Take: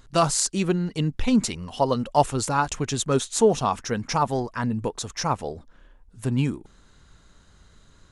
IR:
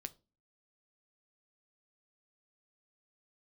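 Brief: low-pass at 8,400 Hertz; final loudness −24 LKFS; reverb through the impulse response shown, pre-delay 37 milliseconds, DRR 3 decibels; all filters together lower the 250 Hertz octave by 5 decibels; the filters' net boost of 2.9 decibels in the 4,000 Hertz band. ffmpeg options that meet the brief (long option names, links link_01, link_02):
-filter_complex "[0:a]lowpass=8400,equalizer=frequency=250:width_type=o:gain=-6.5,equalizer=frequency=4000:width_type=o:gain=4,asplit=2[link_01][link_02];[1:a]atrim=start_sample=2205,adelay=37[link_03];[link_02][link_03]afir=irnorm=-1:irlink=0,volume=1dB[link_04];[link_01][link_04]amix=inputs=2:normalize=0"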